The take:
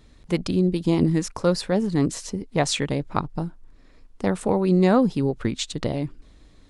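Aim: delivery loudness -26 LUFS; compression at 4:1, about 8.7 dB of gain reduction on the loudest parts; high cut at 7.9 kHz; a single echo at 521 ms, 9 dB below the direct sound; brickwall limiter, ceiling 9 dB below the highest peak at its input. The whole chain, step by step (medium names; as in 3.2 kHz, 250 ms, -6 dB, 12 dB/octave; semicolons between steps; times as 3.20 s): low-pass 7.9 kHz; compression 4:1, threshold -24 dBFS; peak limiter -21.5 dBFS; delay 521 ms -9 dB; trim +6 dB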